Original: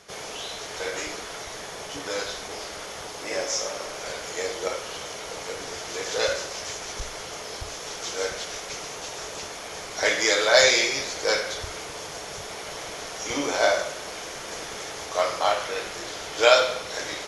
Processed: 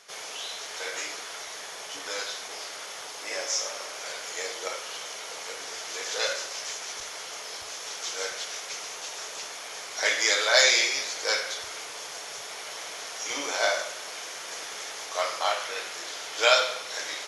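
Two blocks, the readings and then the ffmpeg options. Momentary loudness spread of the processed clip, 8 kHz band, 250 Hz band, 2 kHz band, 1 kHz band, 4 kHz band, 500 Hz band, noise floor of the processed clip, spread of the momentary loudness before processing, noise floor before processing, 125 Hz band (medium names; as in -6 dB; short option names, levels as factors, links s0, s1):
14 LU, 0.0 dB, -11.5 dB, -1.5 dB, -3.5 dB, -0.5 dB, -7.0 dB, -40 dBFS, 15 LU, -37 dBFS, under -15 dB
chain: -af "highpass=f=1100:p=1"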